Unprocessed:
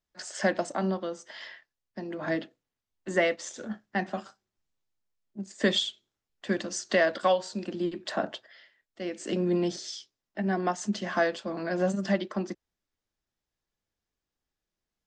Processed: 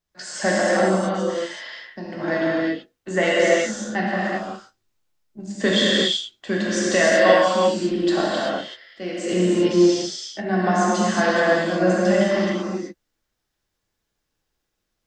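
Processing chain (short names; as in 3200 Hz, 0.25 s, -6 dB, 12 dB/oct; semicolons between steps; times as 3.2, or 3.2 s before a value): non-linear reverb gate 0.41 s flat, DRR -7 dB; gain +2.5 dB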